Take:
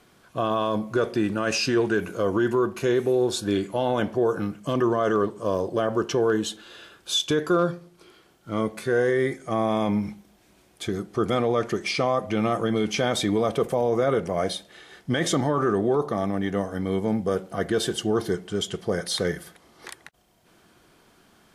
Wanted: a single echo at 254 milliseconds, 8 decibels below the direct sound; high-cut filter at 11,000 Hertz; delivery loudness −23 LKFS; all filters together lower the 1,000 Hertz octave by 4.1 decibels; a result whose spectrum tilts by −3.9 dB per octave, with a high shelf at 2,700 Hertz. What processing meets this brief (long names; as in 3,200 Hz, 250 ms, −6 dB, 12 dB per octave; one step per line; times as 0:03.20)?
low-pass filter 11,000 Hz
parametric band 1,000 Hz −7 dB
high-shelf EQ 2,700 Hz +8 dB
single-tap delay 254 ms −8 dB
level +1.5 dB